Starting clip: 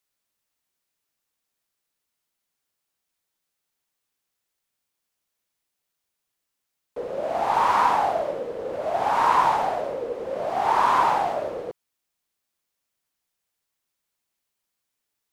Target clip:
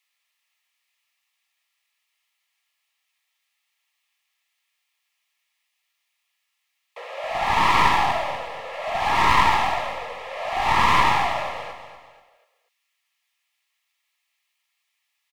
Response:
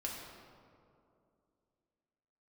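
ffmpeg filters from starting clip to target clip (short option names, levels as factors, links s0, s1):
-filter_complex "[0:a]highpass=f=690:w=0.5412,highpass=f=690:w=1.3066,equalizer=f=2400:w=0.74:g=14,aeval=exprs='clip(val(0),-1,0.0631)':c=same,asuperstop=centerf=1500:order=20:qfactor=6.8,asplit=2[s0][s1];[s1]aecho=0:1:243|486|729|972:0.282|0.116|0.0474|0.0194[s2];[s0][s2]amix=inputs=2:normalize=0"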